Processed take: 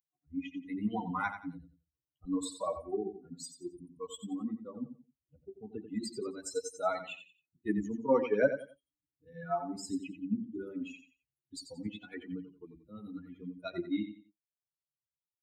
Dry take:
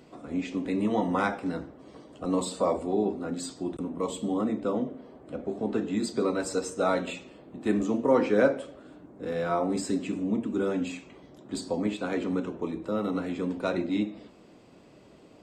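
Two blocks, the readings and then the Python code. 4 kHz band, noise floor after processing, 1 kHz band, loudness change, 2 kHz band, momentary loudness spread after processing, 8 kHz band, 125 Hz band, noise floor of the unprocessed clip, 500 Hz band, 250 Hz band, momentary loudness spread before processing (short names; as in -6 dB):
-7.0 dB, under -85 dBFS, -7.0 dB, -7.5 dB, -6.5 dB, 17 LU, -6.0 dB, -9.5 dB, -54 dBFS, -8.0 dB, -9.0 dB, 11 LU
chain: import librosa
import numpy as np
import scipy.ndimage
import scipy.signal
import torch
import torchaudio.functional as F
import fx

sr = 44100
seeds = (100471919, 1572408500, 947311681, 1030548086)

y = fx.bin_expand(x, sr, power=3.0)
y = fx.echo_feedback(y, sr, ms=89, feedback_pct=27, wet_db=-10.0)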